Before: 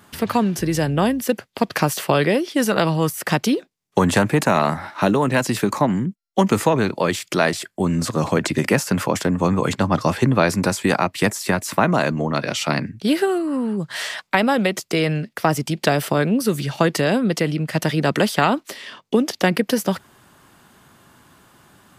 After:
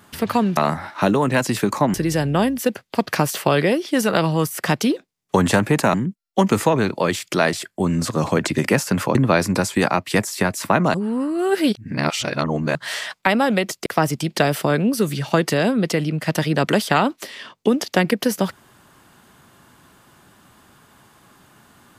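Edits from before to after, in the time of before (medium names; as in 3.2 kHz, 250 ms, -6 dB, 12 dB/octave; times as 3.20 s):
4.57–5.94 s: move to 0.57 s
9.15–10.23 s: delete
12.02–13.83 s: reverse
14.94–15.33 s: delete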